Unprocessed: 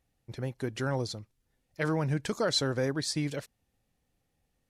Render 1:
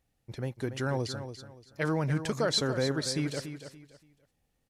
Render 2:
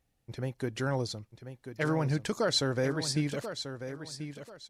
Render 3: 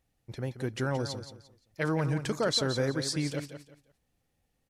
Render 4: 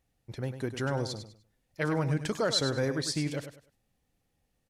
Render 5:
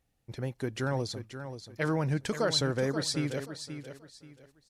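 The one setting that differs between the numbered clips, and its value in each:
feedback echo, time: 0.286, 1.038, 0.174, 0.1, 0.531 s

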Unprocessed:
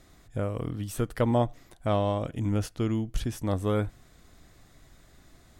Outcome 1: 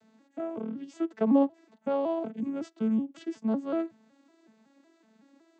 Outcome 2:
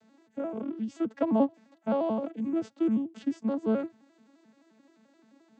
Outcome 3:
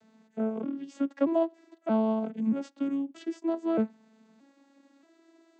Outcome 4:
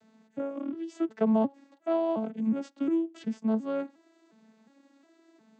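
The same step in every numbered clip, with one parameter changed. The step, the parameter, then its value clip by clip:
arpeggiated vocoder, a note every: 186, 87, 628, 359 ms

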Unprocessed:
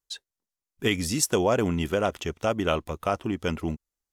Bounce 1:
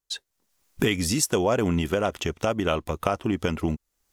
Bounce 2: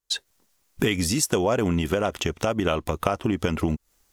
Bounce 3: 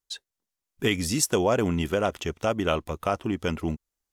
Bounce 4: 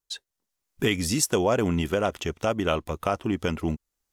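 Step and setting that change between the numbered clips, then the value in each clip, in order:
recorder AGC, rising by: 36, 89, 5.2, 14 dB/s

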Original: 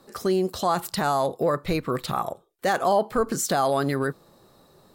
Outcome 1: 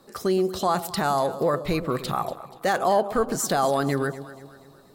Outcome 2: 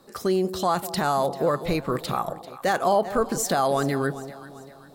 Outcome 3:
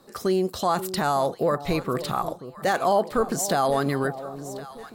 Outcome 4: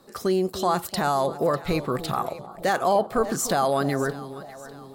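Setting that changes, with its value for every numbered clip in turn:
echo with dull and thin repeats by turns, time: 0.12, 0.196, 0.533, 0.299 s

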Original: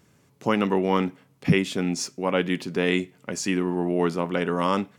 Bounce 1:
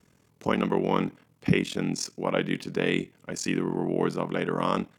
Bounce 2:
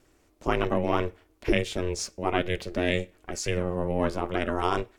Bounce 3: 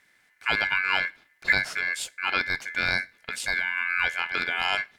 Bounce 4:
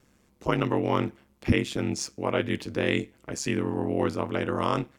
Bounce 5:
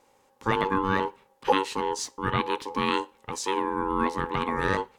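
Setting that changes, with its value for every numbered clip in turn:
ring modulator, frequency: 21, 180, 1900, 69, 670 Hz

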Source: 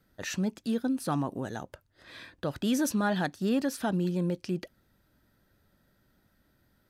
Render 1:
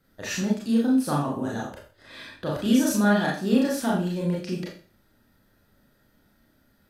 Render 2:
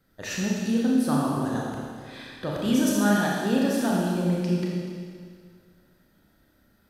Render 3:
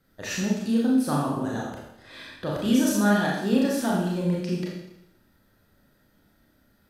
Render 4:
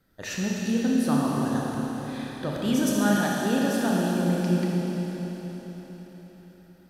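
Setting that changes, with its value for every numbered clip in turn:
Schroeder reverb, RT60: 0.4, 2, 0.84, 4.6 s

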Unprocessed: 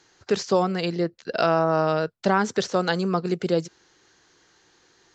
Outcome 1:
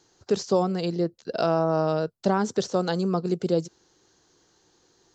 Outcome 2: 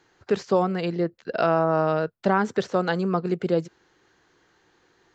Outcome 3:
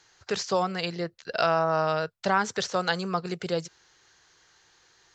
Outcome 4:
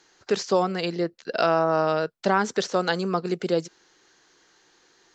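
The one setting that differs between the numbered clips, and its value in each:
bell, frequency: 2000, 5900, 280, 84 Hz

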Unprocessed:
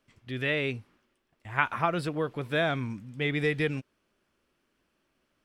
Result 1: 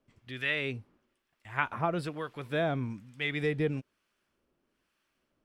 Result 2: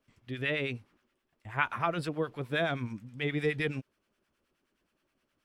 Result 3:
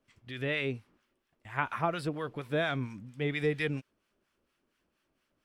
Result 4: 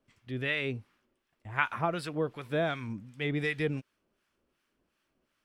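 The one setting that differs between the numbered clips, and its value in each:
harmonic tremolo, rate: 1.1, 9.5, 4.3, 2.7 Hz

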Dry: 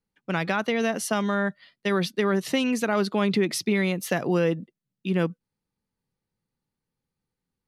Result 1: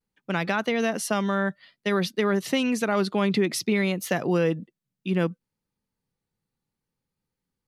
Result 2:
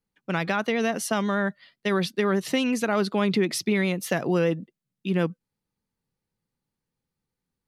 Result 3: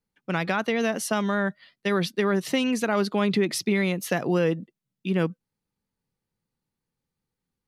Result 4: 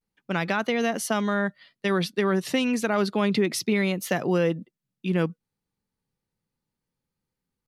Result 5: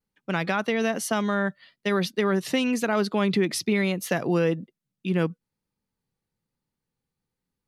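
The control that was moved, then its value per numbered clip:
vibrato, rate: 0.58, 8.1, 5.3, 0.32, 1.1 Hz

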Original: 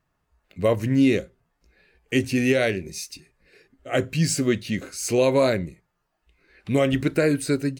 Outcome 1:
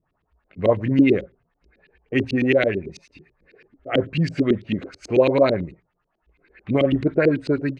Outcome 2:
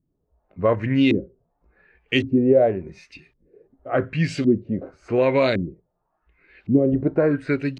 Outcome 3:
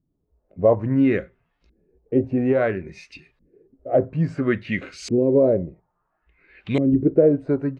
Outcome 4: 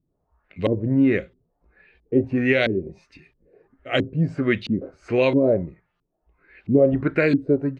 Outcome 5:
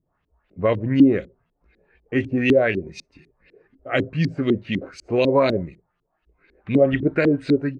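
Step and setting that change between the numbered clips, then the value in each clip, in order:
LFO low-pass, rate: 9.1, 0.9, 0.59, 1.5, 4 Hz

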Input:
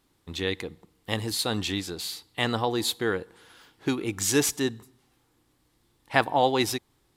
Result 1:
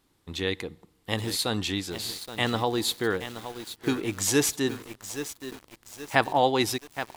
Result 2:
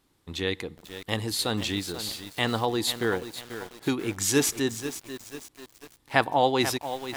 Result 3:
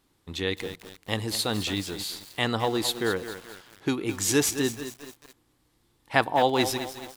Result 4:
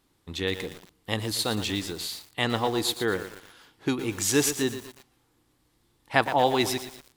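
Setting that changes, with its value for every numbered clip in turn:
lo-fi delay, time: 0.823, 0.489, 0.215, 0.117 s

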